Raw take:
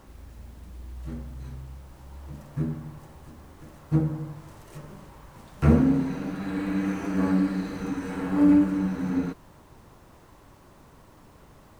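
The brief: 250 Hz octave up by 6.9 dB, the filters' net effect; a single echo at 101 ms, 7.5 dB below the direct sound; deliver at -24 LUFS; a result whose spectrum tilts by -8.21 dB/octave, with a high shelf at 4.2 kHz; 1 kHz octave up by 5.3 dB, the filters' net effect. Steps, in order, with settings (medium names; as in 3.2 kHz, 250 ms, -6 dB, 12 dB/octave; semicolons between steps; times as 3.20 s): peaking EQ 250 Hz +8 dB; peaking EQ 1 kHz +6.5 dB; treble shelf 4.2 kHz -4 dB; delay 101 ms -7.5 dB; trim -5 dB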